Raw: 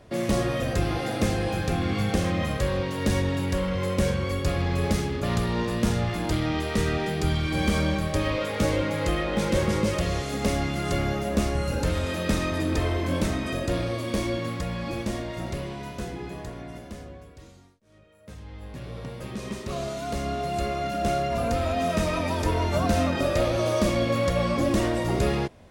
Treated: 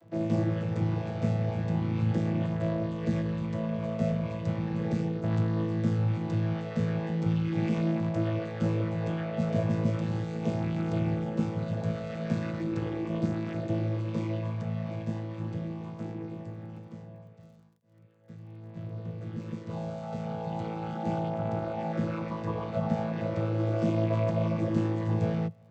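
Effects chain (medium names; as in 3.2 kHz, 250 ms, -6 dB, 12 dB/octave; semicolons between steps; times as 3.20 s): vocoder on a held chord bare fifth, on A2; 21.30–23.80 s: treble shelf 5.8 kHz -8 dB; crackle 27 per s -57 dBFS; trim -2 dB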